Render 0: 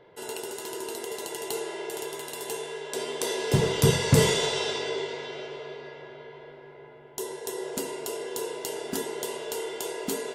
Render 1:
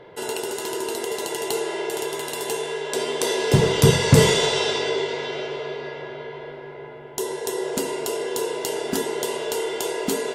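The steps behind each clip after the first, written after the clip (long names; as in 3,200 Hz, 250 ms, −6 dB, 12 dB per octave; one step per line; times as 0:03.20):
in parallel at −3 dB: downward compressor, threshold −37 dBFS, peak gain reduction 21 dB
on the sum: high-shelf EQ 8,800 Hz −4.5 dB
level +5 dB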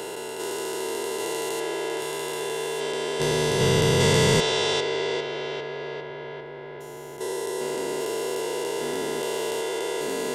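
spectrum averaged block by block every 400 ms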